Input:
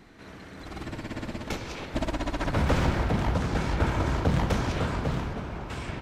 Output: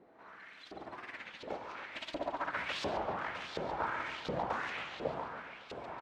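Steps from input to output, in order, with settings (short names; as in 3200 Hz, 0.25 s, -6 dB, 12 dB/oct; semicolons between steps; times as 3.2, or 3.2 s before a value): LFO band-pass saw up 1.4 Hz 470–4200 Hz; feedback echo 0.141 s, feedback 53%, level -12 dB; record warp 33 1/3 rpm, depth 250 cents; gain +1 dB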